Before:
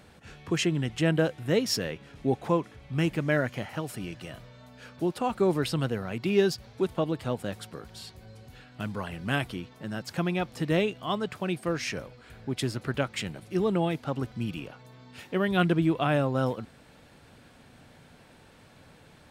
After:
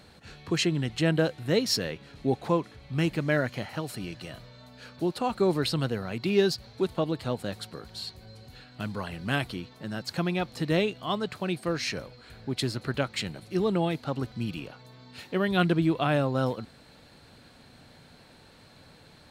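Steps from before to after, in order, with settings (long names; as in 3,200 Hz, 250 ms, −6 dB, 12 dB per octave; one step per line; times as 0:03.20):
parametric band 4,200 Hz +11.5 dB 0.22 octaves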